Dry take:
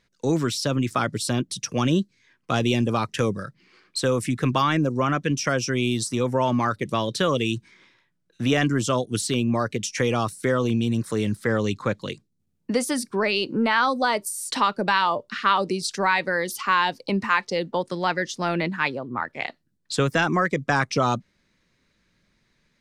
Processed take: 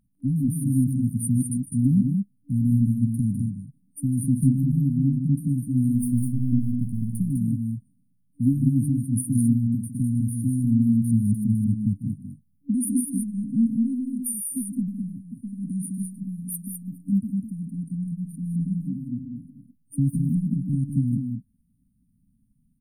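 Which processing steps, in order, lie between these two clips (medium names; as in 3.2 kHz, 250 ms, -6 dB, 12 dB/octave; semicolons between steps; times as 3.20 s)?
5.95–7.17 s: partial rectifier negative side -7 dB; FFT band-reject 290–8900 Hz; loudspeakers at several distances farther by 52 m -12 dB, 70 m -5 dB; trim +3.5 dB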